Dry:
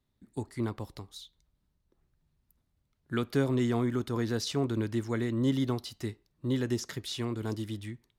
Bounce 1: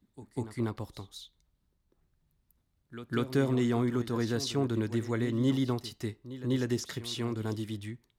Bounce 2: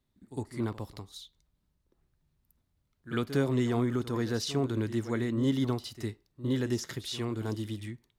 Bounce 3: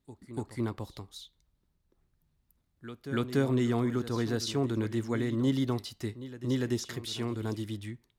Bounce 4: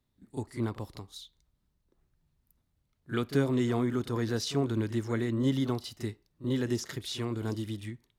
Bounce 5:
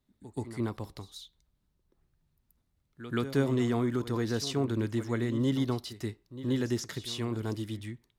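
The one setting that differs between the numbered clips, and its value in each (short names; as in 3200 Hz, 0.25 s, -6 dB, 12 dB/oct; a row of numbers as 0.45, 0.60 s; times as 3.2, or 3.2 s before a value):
pre-echo, time: 196, 57, 289, 36, 129 ms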